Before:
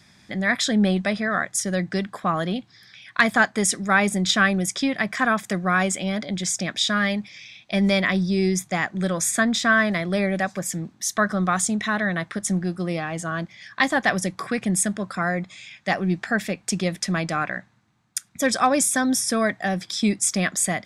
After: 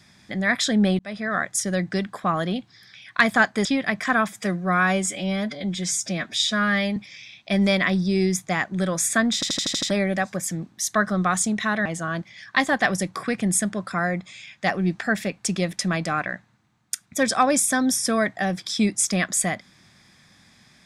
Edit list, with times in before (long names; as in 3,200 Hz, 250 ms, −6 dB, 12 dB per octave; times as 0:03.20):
0:00.99–0:01.51: fade in equal-power
0:03.65–0:04.77: remove
0:05.40–0:07.19: time-stretch 1.5×
0:09.57: stutter in place 0.08 s, 7 plays
0:12.08–0:13.09: remove